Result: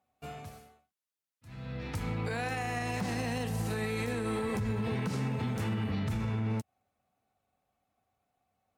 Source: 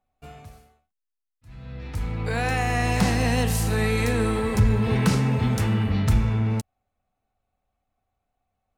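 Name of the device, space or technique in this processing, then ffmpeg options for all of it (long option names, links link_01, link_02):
podcast mastering chain: -af "highpass=110,deesser=0.7,acompressor=threshold=-26dB:ratio=3,alimiter=level_in=2dB:limit=-24dB:level=0:latency=1:release=112,volume=-2dB,volume=1.5dB" -ar 48000 -c:a libmp3lame -b:a 96k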